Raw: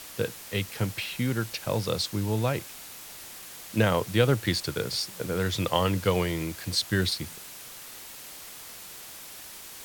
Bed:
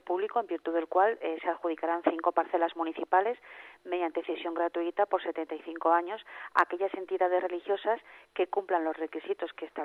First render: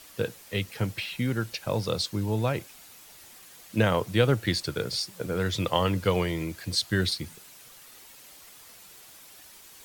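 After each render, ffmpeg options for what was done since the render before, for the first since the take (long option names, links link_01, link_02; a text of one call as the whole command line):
ffmpeg -i in.wav -af "afftdn=noise_reduction=8:noise_floor=-44" out.wav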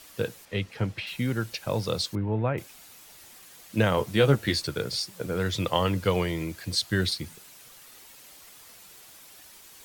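ffmpeg -i in.wav -filter_complex "[0:a]asettb=1/sr,asplit=3[link_01][link_02][link_03];[link_01]atrim=end=0.454[link_04];[link_02]atrim=start=0.45:end=1.07,asetpts=PTS-STARTPTS,afade=type=in:duration=0.004:curve=qsin,afade=type=out:start_time=0.616:duration=0.004:curve=qsin,aemphasis=mode=reproduction:type=50fm[link_05];[link_03]atrim=start=1.066[link_06];[link_04][link_05]acrossfade=duration=0.004:curve1=hsin:curve2=qsin[link_07];[link_07][link_06]acrossfade=duration=0.004:curve1=qsin:curve2=hsin,asettb=1/sr,asplit=3[link_08][link_09][link_10];[link_08]atrim=end=2.154[link_11];[link_09]atrim=start=2.15:end=2.58,asetpts=PTS-STARTPTS,afade=type=in:duration=0.004:curve=qsin,afade=type=out:start_time=0.426:duration=0.004:curve=qsin,lowpass=frequency=2300:width=0.5412,lowpass=frequency=2300:width=1.3066[link_12];[link_10]atrim=start=2.576[link_13];[link_11][link_12]acrossfade=duration=0.004:curve1=hsin:curve2=qsin[link_14];[link_14][link_13]acrossfade=duration=0.004:curve1=qsin:curve2=hsin,asettb=1/sr,asplit=3[link_15][link_16][link_17];[link_15]atrim=end=3.964[link_18];[link_16]atrim=start=3.96:end=4.67,asetpts=PTS-STARTPTS,afade=type=in:duration=0.004:curve=qsin,afade=type=out:start_time=0.706:duration=0.004:curve=qsin,asplit=2[link_19][link_20];[link_20]adelay=14,volume=-5.5dB[link_21];[link_19][link_21]amix=inputs=2:normalize=0,atrim=end_sample=31311[link_22];[link_17]atrim=start=4.666[link_23];[link_18][link_22]acrossfade=duration=0.004:curve1=hsin:curve2=qsin[link_24];[link_24][link_23]acrossfade=duration=0.004:curve1=qsin:curve2=hsin" out.wav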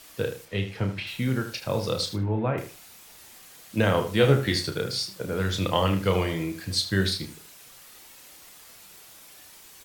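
ffmpeg -i in.wav -filter_complex "[0:a]asplit=2[link_01][link_02];[link_02]adelay=31,volume=-7dB[link_03];[link_01][link_03]amix=inputs=2:normalize=0,asplit=2[link_04][link_05];[link_05]adelay=77,lowpass=frequency=4000:poles=1,volume=-9.5dB,asplit=2[link_06][link_07];[link_07]adelay=77,lowpass=frequency=4000:poles=1,volume=0.2,asplit=2[link_08][link_09];[link_09]adelay=77,lowpass=frequency=4000:poles=1,volume=0.2[link_10];[link_04][link_06][link_08][link_10]amix=inputs=4:normalize=0" out.wav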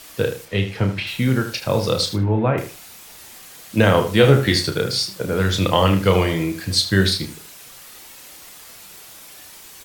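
ffmpeg -i in.wav -af "volume=7.5dB,alimiter=limit=-1dB:level=0:latency=1" out.wav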